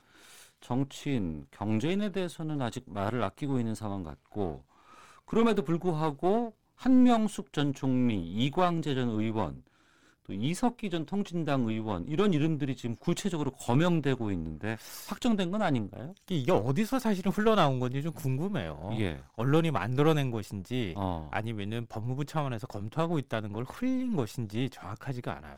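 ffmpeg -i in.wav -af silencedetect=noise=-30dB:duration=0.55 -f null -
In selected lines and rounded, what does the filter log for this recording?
silence_start: 0.00
silence_end: 0.70 | silence_duration: 0.70
silence_start: 4.55
silence_end: 5.33 | silence_duration: 0.78
silence_start: 9.50
silence_end: 10.30 | silence_duration: 0.79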